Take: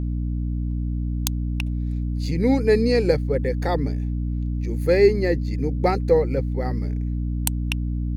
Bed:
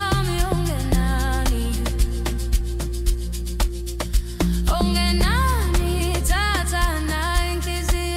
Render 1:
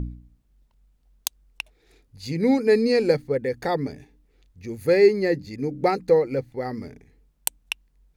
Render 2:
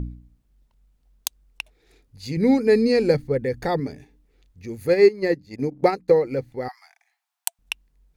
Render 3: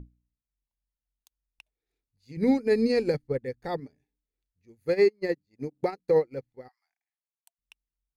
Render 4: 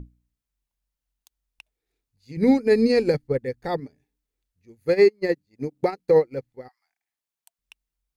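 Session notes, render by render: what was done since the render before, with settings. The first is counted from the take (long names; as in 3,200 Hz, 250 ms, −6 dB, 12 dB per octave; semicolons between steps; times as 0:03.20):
hum removal 60 Hz, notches 5
0:02.37–0:03.80: low-shelf EQ 130 Hz +11 dB; 0:04.88–0:06.12: transient designer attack +4 dB, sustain −11 dB; 0:06.68–0:07.59: Chebyshev high-pass filter 680 Hz, order 10
brickwall limiter −12 dBFS, peak gain reduction 10.5 dB; expander for the loud parts 2.5 to 1, over −35 dBFS
level +5 dB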